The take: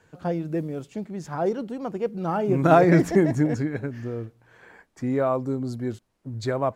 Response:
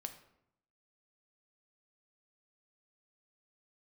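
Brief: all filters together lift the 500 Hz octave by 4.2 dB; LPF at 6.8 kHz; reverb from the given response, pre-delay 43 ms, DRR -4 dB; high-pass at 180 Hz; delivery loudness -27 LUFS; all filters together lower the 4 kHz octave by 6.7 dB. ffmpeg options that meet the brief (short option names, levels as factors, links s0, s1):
-filter_complex "[0:a]highpass=180,lowpass=6800,equalizer=f=500:t=o:g=6,equalizer=f=4000:t=o:g=-8,asplit=2[s0][s1];[1:a]atrim=start_sample=2205,adelay=43[s2];[s1][s2]afir=irnorm=-1:irlink=0,volume=2.24[s3];[s0][s3]amix=inputs=2:normalize=0,volume=0.316"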